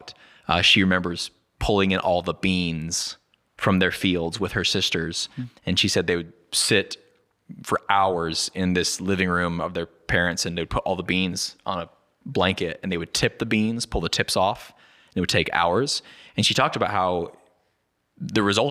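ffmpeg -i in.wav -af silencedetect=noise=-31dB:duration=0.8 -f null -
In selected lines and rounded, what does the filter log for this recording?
silence_start: 17.27
silence_end: 18.22 | silence_duration: 0.95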